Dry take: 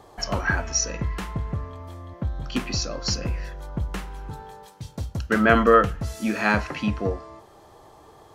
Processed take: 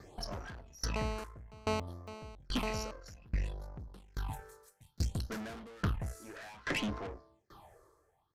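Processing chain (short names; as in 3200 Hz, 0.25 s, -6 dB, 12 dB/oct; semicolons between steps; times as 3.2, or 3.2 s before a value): 4.08–5.83 high shelf 2300 Hz +11 dB; 6.36–7.07 overdrive pedal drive 16 dB, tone 1800 Hz, clips at -6 dBFS; phaser stages 6, 0.6 Hz, lowest notch 200–3000 Hz; tube stage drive 30 dB, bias 0.65; downsampling 32000 Hz; 0.96–2.91 GSM buzz -35 dBFS; dB-ramp tremolo decaying 1.2 Hz, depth 29 dB; gain +4.5 dB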